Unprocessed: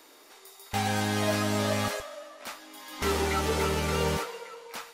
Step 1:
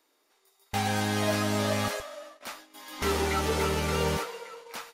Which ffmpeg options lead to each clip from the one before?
-af "bandreject=f=7700:w=27,agate=range=0.158:threshold=0.00501:ratio=16:detection=peak"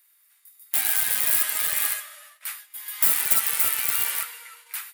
-af "highpass=f=1800:t=q:w=1.6,aeval=exprs='(mod(15.8*val(0)+1,2)-1)/15.8':c=same,aexciter=amount=6:drive=6.5:freq=8400"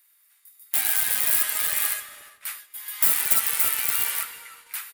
-filter_complex "[0:a]asplit=2[s0][s1];[s1]adelay=357,lowpass=f=940:p=1,volume=0.188,asplit=2[s2][s3];[s3]adelay=357,lowpass=f=940:p=1,volume=0.29,asplit=2[s4][s5];[s5]adelay=357,lowpass=f=940:p=1,volume=0.29[s6];[s0][s2][s4][s6]amix=inputs=4:normalize=0"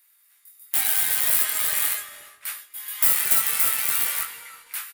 -filter_complex "[0:a]asplit=2[s0][s1];[s1]adelay=22,volume=0.562[s2];[s0][s2]amix=inputs=2:normalize=0"

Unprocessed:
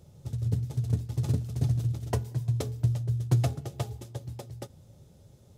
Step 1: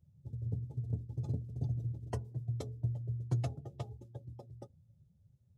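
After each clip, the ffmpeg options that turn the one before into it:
-af "afftdn=nr=19:nf=-44,volume=0.355"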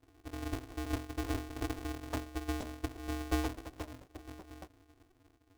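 -af "flanger=delay=8.4:depth=4.5:regen=-53:speed=0.86:shape=triangular,aeval=exprs='val(0)*sgn(sin(2*PI*190*n/s))':c=same,volume=1.5"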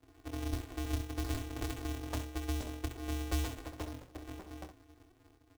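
-filter_complex "[0:a]asplit=2[s0][s1];[s1]aecho=0:1:26|66:0.355|0.355[s2];[s0][s2]amix=inputs=2:normalize=0,acrossover=split=140|3000[s3][s4][s5];[s4]acompressor=threshold=0.01:ratio=4[s6];[s3][s6][s5]amix=inputs=3:normalize=0,volume=1.19"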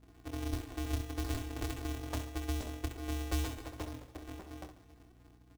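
-af "aecho=1:1:141|282|423|564|705:0.119|0.0642|0.0347|0.0187|0.0101,aeval=exprs='val(0)+0.000891*(sin(2*PI*60*n/s)+sin(2*PI*2*60*n/s)/2+sin(2*PI*3*60*n/s)/3+sin(2*PI*4*60*n/s)/4+sin(2*PI*5*60*n/s)/5)':c=same"

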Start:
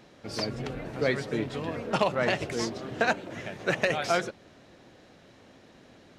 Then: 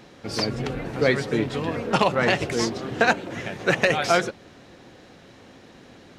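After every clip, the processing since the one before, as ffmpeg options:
-af "bandreject=f=620:w=12,volume=2.11"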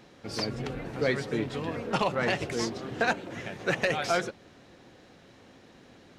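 -af "asoftclip=type=tanh:threshold=0.422,volume=0.501"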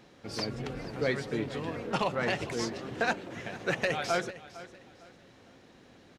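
-af "aecho=1:1:455|910|1365:0.141|0.041|0.0119,volume=0.75"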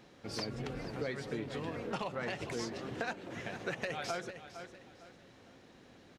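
-af "acompressor=threshold=0.0251:ratio=6,volume=0.794"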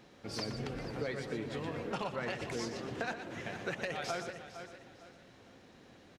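-af "aecho=1:1:120|240|360:0.335|0.104|0.0322"

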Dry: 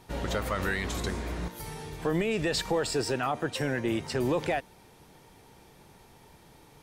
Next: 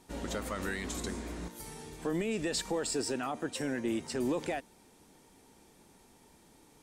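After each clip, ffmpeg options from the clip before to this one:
-af "equalizer=f=125:t=o:w=1:g=-6,equalizer=f=250:t=o:w=1:g=8,equalizer=f=8000:t=o:w=1:g=9,volume=0.422"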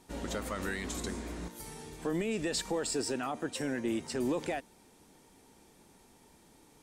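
-af anull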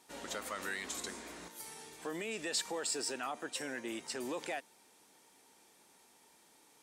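-af "highpass=f=880:p=1"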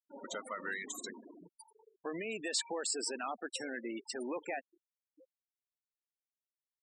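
-filter_complex "[0:a]asplit=2[s0][s1];[s1]adelay=874.6,volume=0.112,highshelf=f=4000:g=-19.7[s2];[s0][s2]amix=inputs=2:normalize=0,afftfilt=real='re*gte(hypot(re,im),0.0141)':imag='im*gte(hypot(re,im),0.0141)':win_size=1024:overlap=0.75,volume=1.12"

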